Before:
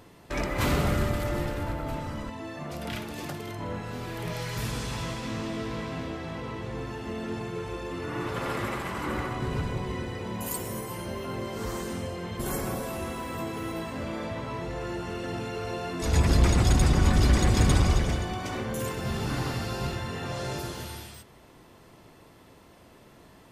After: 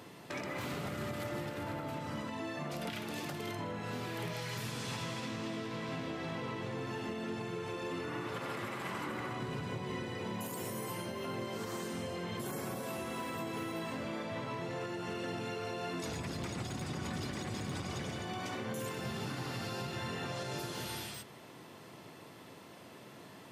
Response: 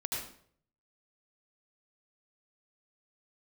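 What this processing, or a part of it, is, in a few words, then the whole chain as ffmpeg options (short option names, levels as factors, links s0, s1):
broadcast voice chain: -af "highpass=f=110:w=0.5412,highpass=f=110:w=1.3066,deesser=0.65,acompressor=threshold=0.0126:ratio=3,equalizer=f=3100:t=o:w=1.8:g=2.5,alimiter=level_in=2.11:limit=0.0631:level=0:latency=1:release=140,volume=0.473,volume=1.12"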